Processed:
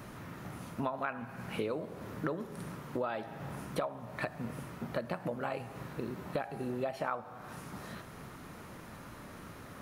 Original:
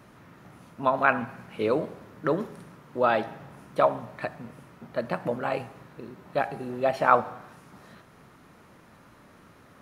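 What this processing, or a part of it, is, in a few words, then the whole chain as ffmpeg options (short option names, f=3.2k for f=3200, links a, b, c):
ASMR close-microphone chain: -af "lowshelf=f=100:g=5.5,acompressor=threshold=-37dB:ratio=10,highshelf=f=7.9k:g=6,volume=4.5dB"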